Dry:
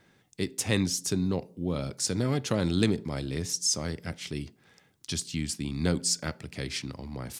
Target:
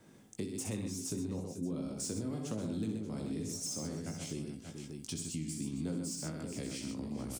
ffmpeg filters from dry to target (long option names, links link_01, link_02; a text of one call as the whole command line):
ffmpeg -i in.wav -filter_complex "[0:a]asplit=2[link_01][link_02];[link_02]adelay=19,volume=-6dB[link_03];[link_01][link_03]amix=inputs=2:normalize=0,acrossover=split=400|490|3700[link_04][link_05][link_06][link_07];[link_07]asoftclip=type=tanh:threshold=-32dB[link_08];[link_04][link_05][link_06][link_08]amix=inputs=4:normalize=0,equalizer=frequency=1800:width=1.8:gain=-7.5,aecho=1:1:63|127|433|583:0.473|0.473|0.168|0.188,acompressor=threshold=-41dB:ratio=4,equalizer=frequency=250:width_type=o:width=1:gain=6,equalizer=frequency=4000:width_type=o:width=1:gain=-6,equalizer=frequency=8000:width_type=o:width=1:gain=7" out.wav